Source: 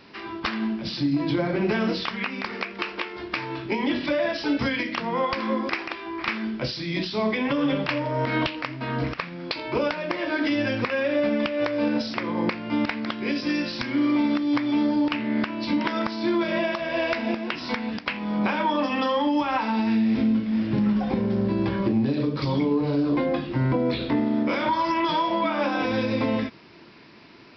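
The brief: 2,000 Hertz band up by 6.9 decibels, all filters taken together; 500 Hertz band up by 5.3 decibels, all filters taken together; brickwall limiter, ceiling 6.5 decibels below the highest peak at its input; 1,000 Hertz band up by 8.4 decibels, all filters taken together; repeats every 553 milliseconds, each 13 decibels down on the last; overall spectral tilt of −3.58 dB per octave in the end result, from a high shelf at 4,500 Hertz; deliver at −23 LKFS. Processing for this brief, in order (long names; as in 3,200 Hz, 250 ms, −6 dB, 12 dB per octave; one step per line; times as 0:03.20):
parametric band 500 Hz +4 dB
parametric band 1,000 Hz +7 dB
parametric band 2,000 Hz +5 dB
high-shelf EQ 4,500 Hz +6.5 dB
brickwall limiter −12 dBFS
repeating echo 553 ms, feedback 22%, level −13 dB
level −1 dB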